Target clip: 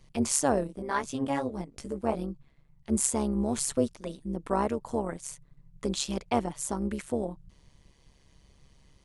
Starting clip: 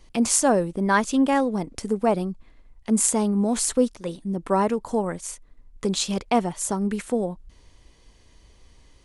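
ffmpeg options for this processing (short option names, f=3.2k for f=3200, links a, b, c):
-filter_complex "[0:a]asettb=1/sr,asplit=3[a][b][c];[a]atrim=end=0.674[d];[b]atrim=start=0.67:end=2.9,asetpts=PTS-STARTPTS,afade=t=in:d=0.004:c=qsin,afade=t=out:st=2.226:d=0.004:c=qsin,flanger=delay=15.5:depth=2.5:speed=2.4[e];[c]atrim=start=2.896[f];[d][e]acrossfade=d=0.004:c1=hsin:c2=qsin[g];[g][f]acrossfade=d=0.004:c1=qsin:c2=hsin,tremolo=f=140:d=0.75,volume=-3dB"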